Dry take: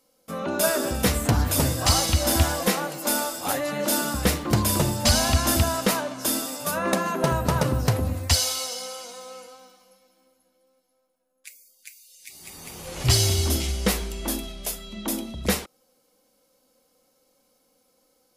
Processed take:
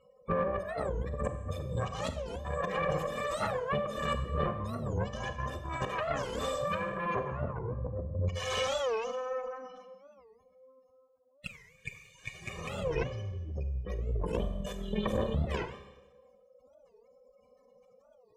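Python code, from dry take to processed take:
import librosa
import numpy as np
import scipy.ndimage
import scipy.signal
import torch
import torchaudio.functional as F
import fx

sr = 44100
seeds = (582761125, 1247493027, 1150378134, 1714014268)

y = fx.lower_of_two(x, sr, delay_ms=1.7)
y = fx.spec_gate(y, sr, threshold_db=-15, keep='strong')
y = fx.peak_eq(y, sr, hz=4700.0, db=-15.0, octaves=0.37)
y = fx.over_compress(y, sr, threshold_db=-35.0, ratio=-1.0)
y = fx.tube_stage(y, sr, drive_db=26.0, bias=0.7)
y = fx.air_absorb(y, sr, metres=170.0)
y = fx.notch_comb(y, sr, f0_hz=670.0)
y = fx.rev_schroeder(y, sr, rt60_s=1.0, comb_ms=30, drr_db=8.0)
y = fx.record_warp(y, sr, rpm=45.0, depth_cents=250.0)
y = y * 10.0 ** (7.0 / 20.0)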